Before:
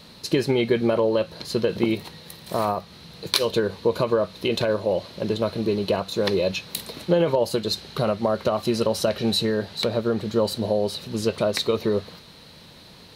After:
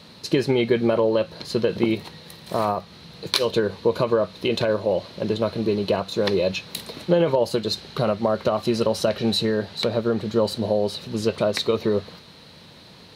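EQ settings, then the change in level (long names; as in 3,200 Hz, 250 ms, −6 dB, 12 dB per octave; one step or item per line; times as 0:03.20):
high-pass filter 61 Hz
high-shelf EQ 9,300 Hz −8.5 dB
+1.0 dB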